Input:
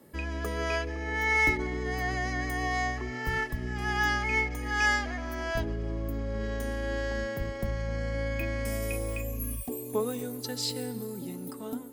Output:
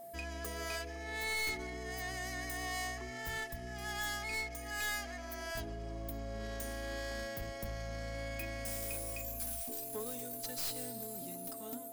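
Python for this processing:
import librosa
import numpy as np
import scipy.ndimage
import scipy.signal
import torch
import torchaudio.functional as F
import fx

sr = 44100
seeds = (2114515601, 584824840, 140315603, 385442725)

y = fx.tracing_dist(x, sr, depth_ms=0.15)
y = librosa.effects.preemphasis(y, coef=0.8, zi=[0.0])
y = fx.rider(y, sr, range_db=3, speed_s=2.0)
y = y + 10.0 ** (-49.0 / 20.0) * np.sin(2.0 * np.pi * 680.0 * np.arange(len(y)) / sr)
y = 10.0 ** (-34.5 / 20.0) * np.tanh(y / 10.0 ** (-34.5 / 20.0))
y = y * 10.0 ** (2.0 / 20.0)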